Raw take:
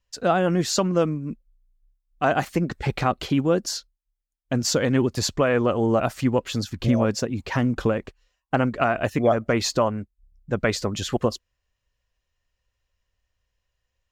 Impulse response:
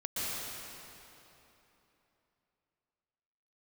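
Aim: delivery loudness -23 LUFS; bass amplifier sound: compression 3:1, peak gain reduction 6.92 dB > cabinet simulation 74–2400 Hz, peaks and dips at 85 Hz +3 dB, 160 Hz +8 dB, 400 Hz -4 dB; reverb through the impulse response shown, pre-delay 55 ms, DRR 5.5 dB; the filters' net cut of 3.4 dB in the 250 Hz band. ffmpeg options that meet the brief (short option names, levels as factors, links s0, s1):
-filter_complex "[0:a]equalizer=f=250:t=o:g=-6.5,asplit=2[s0][s1];[1:a]atrim=start_sample=2205,adelay=55[s2];[s1][s2]afir=irnorm=-1:irlink=0,volume=0.266[s3];[s0][s3]amix=inputs=2:normalize=0,acompressor=threshold=0.0708:ratio=3,highpass=f=74:w=0.5412,highpass=f=74:w=1.3066,equalizer=f=85:t=q:w=4:g=3,equalizer=f=160:t=q:w=4:g=8,equalizer=f=400:t=q:w=4:g=-4,lowpass=f=2400:w=0.5412,lowpass=f=2400:w=1.3066,volume=1.78"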